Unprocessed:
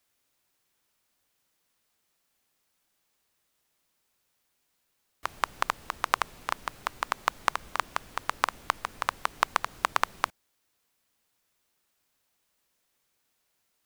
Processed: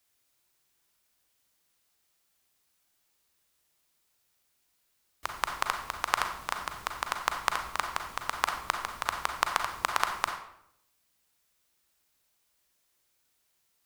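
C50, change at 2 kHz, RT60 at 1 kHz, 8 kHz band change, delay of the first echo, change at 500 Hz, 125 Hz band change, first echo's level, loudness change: 6.5 dB, -0.5 dB, 0.70 s, +2.0 dB, no echo, -1.5 dB, +0.5 dB, no echo, -0.5 dB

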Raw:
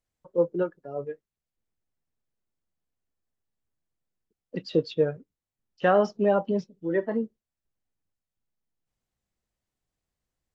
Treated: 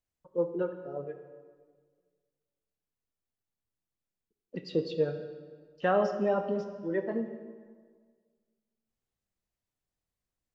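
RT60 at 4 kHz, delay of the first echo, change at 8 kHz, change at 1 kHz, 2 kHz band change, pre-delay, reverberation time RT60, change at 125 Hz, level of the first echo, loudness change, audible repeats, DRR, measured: 1.3 s, no echo, no reading, -4.5 dB, -5.0 dB, 24 ms, 1.7 s, -5.0 dB, no echo, -5.0 dB, no echo, 7.5 dB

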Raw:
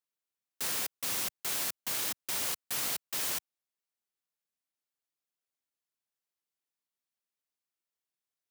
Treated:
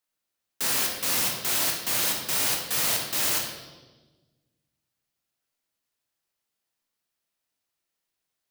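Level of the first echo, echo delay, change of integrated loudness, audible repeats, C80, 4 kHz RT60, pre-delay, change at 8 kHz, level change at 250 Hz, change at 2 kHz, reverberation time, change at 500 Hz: no echo, no echo, +8.0 dB, no echo, 6.5 dB, 1.2 s, 20 ms, +8.0 dB, +10.5 dB, +9.0 dB, 1.3 s, +10.0 dB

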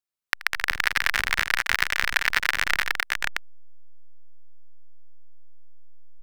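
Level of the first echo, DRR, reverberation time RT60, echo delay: -19.0 dB, no reverb, no reverb, 80 ms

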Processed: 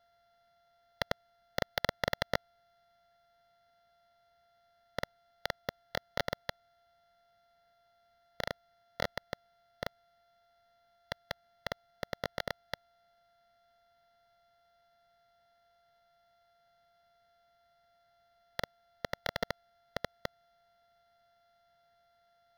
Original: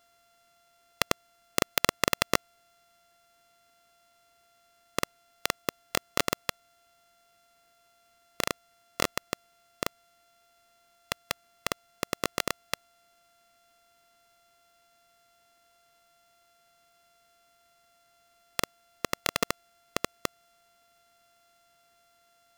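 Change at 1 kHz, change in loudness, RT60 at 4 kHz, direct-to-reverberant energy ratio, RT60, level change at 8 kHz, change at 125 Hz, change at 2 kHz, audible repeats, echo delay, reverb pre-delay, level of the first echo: -7.0 dB, -7.5 dB, no reverb, no reverb, no reverb, -20.0 dB, -3.0 dB, -6.0 dB, no echo, no echo, no reverb, no echo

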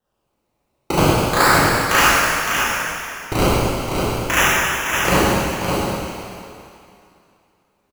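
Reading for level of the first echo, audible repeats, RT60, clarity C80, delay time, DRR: -5.0 dB, 1, 2.5 s, -3.5 dB, 562 ms, -9.5 dB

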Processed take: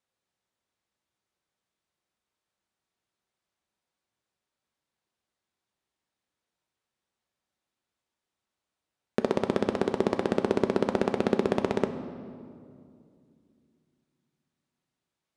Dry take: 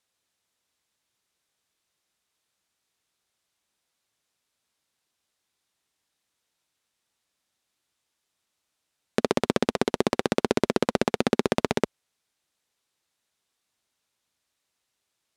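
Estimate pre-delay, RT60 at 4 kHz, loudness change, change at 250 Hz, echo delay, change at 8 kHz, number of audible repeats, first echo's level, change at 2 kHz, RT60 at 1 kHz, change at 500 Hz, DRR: 5 ms, 1.5 s, -2.0 dB, -2.0 dB, no echo, -11.5 dB, no echo, no echo, -5.5 dB, 2.1 s, -1.0 dB, 7.0 dB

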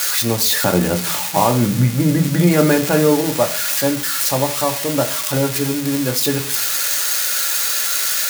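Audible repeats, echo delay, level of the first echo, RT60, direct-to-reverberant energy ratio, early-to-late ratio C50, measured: no echo, no echo, no echo, 0.45 s, 3.0 dB, 14.5 dB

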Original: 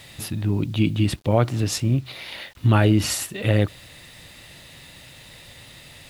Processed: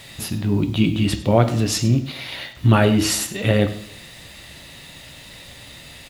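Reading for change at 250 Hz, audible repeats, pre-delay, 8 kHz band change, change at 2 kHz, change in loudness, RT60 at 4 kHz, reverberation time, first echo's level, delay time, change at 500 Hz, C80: +3.5 dB, 1, 3 ms, +4.0 dB, +3.5 dB, +2.5 dB, 0.65 s, 0.60 s, -17.0 dB, 99 ms, +4.0 dB, 14.0 dB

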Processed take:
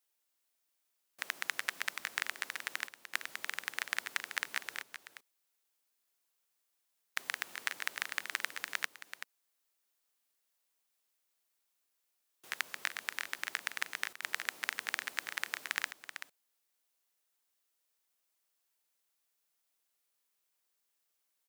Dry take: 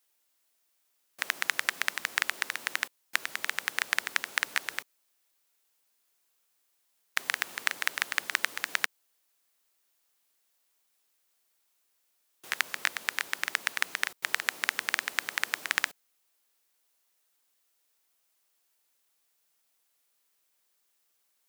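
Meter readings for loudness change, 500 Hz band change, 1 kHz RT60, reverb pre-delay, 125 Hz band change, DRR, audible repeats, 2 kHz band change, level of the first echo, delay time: -7.5 dB, -7.0 dB, no reverb, no reverb, no reading, no reverb, 1, -7.0 dB, -10.0 dB, 382 ms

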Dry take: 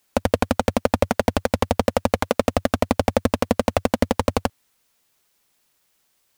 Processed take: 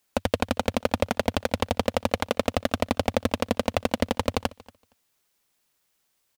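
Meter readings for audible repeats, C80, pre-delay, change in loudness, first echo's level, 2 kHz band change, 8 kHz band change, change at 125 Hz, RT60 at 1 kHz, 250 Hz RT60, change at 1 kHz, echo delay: 1, no reverb, no reverb, -5.0 dB, -22.5 dB, -3.0 dB, -4.5 dB, -5.5 dB, no reverb, no reverb, -5.0 dB, 233 ms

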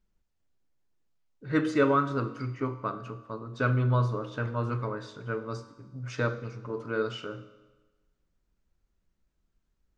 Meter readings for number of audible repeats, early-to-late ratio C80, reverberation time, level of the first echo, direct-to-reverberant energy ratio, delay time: no echo, 14.5 dB, 1.2 s, no echo, 10.5 dB, no echo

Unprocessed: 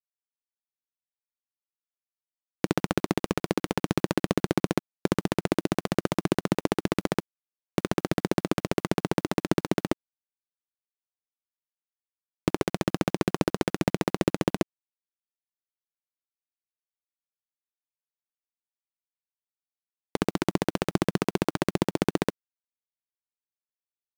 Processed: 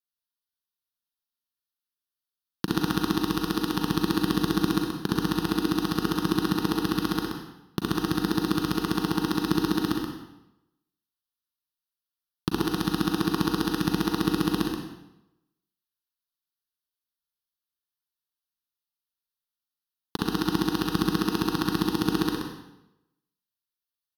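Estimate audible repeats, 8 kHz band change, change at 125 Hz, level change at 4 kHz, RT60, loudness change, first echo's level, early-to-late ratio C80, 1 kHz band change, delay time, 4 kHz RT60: 1, +1.0 dB, +0.5 dB, +6.0 dB, 0.90 s, +1.5 dB, -6.5 dB, 2.5 dB, +1.5 dB, 127 ms, 0.75 s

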